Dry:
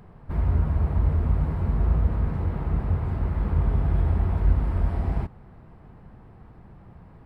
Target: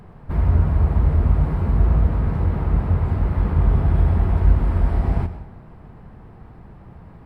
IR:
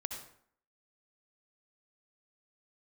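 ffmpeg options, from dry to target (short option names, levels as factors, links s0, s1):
-filter_complex "[0:a]asplit=2[s0][s1];[1:a]atrim=start_sample=2205,asetrate=31752,aresample=44100[s2];[s1][s2]afir=irnorm=-1:irlink=0,volume=0.531[s3];[s0][s3]amix=inputs=2:normalize=0,volume=1.19"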